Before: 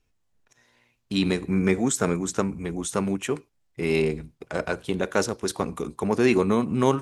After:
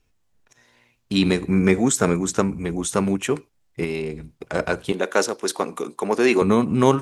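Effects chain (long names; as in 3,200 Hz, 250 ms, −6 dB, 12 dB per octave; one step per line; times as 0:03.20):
0:03.84–0:04.36: downward compressor 3 to 1, threshold −31 dBFS, peak gain reduction 10 dB
0:04.92–0:06.42: high-pass filter 310 Hz 12 dB per octave
level +4.5 dB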